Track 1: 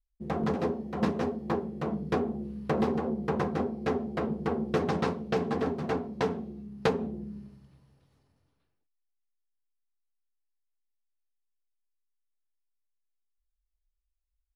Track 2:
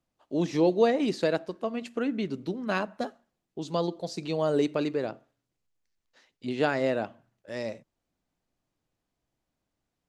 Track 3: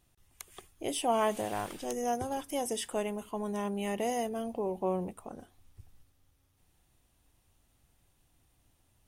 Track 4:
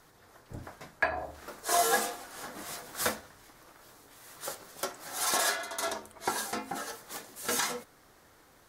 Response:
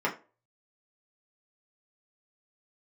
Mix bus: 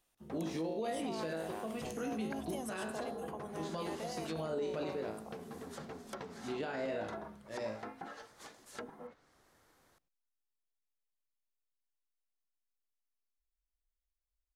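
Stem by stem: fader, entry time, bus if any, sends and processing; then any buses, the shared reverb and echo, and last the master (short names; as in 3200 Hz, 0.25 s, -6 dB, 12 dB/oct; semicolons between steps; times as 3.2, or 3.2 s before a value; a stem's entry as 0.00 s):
-7.0 dB, 0.00 s, no send, compressor, threshold -29 dBFS, peak gain reduction 8.5 dB; auto duck -7 dB, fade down 0.20 s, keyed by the second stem
+1.0 dB, 0.00 s, no send, resonator 54 Hz, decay 0.49 s, harmonics all, mix 90%
-4.5 dB, 0.00 s, no send, HPF 420 Hz; compressor 2:1, threshold -40 dBFS, peak gain reduction 9 dB
-9.0 dB, 1.30 s, no send, treble ducked by the level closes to 450 Hz, closed at -26.5 dBFS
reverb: off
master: limiter -29.5 dBFS, peak gain reduction 10 dB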